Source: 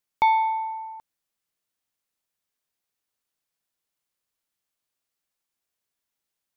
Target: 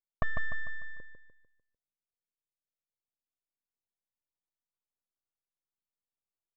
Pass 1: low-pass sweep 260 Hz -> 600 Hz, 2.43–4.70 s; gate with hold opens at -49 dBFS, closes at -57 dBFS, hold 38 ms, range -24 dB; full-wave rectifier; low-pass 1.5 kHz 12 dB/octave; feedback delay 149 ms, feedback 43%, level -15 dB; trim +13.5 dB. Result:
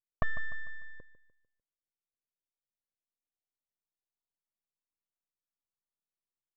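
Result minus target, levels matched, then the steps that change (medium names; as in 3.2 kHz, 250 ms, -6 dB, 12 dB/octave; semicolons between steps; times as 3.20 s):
echo-to-direct -8.5 dB
change: feedback delay 149 ms, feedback 43%, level -6.5 dB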